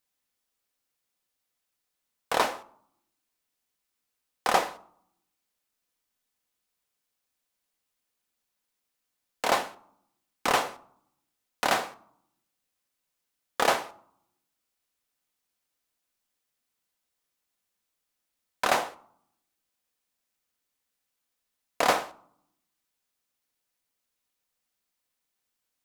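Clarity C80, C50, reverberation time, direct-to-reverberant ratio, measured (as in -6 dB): 23.5 dB, 20.5 dB, 0.70 s, 11.0 dB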